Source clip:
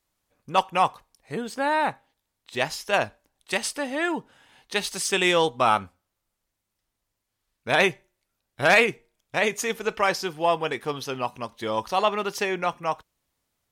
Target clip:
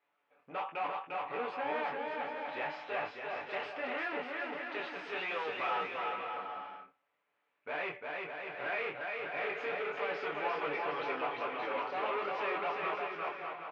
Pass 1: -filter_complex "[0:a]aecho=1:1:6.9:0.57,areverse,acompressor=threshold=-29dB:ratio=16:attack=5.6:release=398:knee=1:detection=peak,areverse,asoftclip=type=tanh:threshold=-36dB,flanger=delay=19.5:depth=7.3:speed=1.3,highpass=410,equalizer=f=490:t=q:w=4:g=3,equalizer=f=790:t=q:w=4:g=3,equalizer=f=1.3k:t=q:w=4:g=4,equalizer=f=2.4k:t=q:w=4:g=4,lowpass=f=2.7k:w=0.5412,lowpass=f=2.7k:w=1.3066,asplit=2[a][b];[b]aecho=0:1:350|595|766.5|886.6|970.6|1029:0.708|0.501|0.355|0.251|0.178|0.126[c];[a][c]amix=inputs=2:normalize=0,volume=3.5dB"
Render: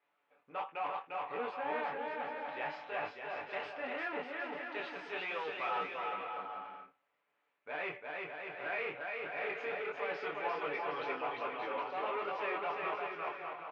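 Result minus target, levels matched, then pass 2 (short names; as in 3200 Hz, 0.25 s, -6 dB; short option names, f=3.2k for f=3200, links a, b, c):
compressor: peak gain reduction +9.5 dB
-filter_complex "[0:a]aecho=1:1:6.9:0.57,areverse,acompressor=threshold=-19dB:ratio=16:attack=5.6:release=398:knee=1:detection=peak,areverse,asoftclip=type=tanh:threshold=-36dB,flanger=delay=19.5:depth=7.3:speed=1.3,highpass=410,equalizer=f=490:t=q:w=4:g=3,equalizer=f=790:t=q:w=4:g=3,equalizer=f=1.3k:t=q:w=4:g=4,equalizer=f=2.4k:t=q:w=4:g=4,lowpass=f=2.7k:w=0.5412,lowpass=f=2.7k:w=1.3066,asplit=2[a][b];[b]aecho=0:1:350|595|766.5|886.6|970.6|1029:0.708|0.501|0.355|0.251|0.178|0.126[c];[a][c]amix=inputs=2:normalize=0,volume=3.5dB"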